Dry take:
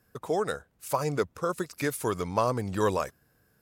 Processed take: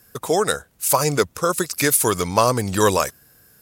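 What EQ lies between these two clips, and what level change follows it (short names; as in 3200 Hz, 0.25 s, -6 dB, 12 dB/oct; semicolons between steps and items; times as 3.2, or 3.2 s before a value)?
bell 12000 Hz +12.5 dB 2.7 oct; +8.0 dB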